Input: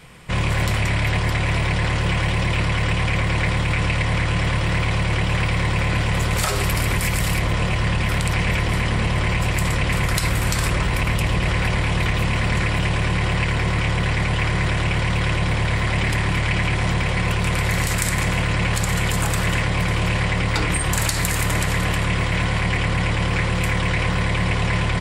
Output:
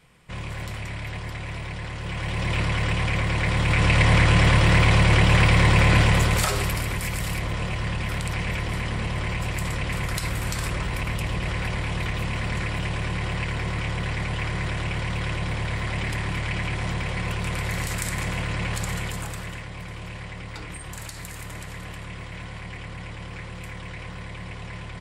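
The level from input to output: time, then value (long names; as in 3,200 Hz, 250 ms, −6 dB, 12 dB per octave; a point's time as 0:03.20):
0:01.97 −12.5 dB
0:02.55 −3.5 dB
0:03.41 −3.5 dB
0:04.04 +3.5 dB
0:06.01 +3.5 dB
0:06.89 −7 dB
0:18.88 −7 dB
0:19.64 −16 dB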